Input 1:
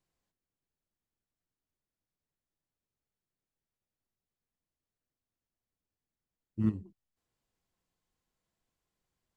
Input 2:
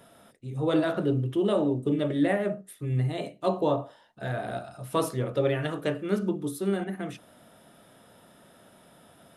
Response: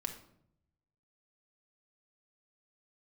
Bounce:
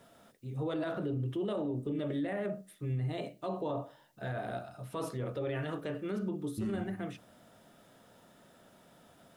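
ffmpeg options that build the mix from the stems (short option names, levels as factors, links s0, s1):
-filter_complex "[0:a]crystalizer=i=9:c=0,acontrast=78,volume=0.501,asplit=2[s0][s1];[s1]volume=0.316[s2];[1:a]volume=0.562,asplit=3[s3][s4][s5];[s4]volume=0.0708[s6];[s5]apad=whole_len=412784[s7];[s0][s7]sidechaincompress=threshold=0.0178:ratio=8:attack=16:release=103[s8];[2:a]atrim=start_sample=2205[s9];[s2][s6]amix=inputs=2:normalize=0[s10];[s10][s9]afir=irnorm=-1:irlink=0[s11];[s8][s3][s11]amix=inputs=3:normalize=0,highshelf=f=8000:g=-10,alimiter=level_in=1.5:limit=0.0631:level=0:latency=1:release=30,volume=0.668"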